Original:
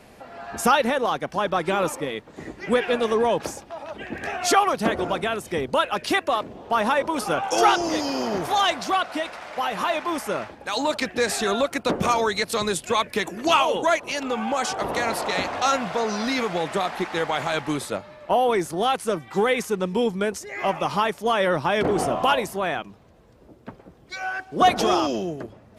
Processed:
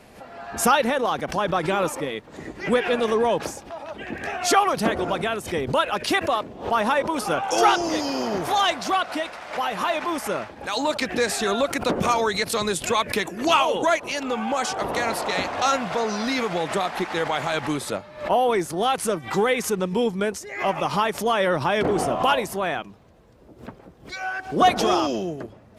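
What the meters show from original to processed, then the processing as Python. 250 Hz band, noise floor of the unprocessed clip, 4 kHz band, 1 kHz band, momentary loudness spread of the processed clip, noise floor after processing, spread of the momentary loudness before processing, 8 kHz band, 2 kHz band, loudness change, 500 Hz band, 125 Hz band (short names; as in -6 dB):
+0.5 dB, -50 dBFS, +0.5 dB, 0.0 dB, 11 LU, -48 dBFS, 10 LU, +1.5 dB, +0.5 dB, 0.0 dB, 0.0 dB, +1.0 dB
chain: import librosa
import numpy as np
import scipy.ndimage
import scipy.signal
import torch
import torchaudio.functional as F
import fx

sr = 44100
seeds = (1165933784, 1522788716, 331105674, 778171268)

y = fx.pre_swell(x, sr, db_per_s=140.0)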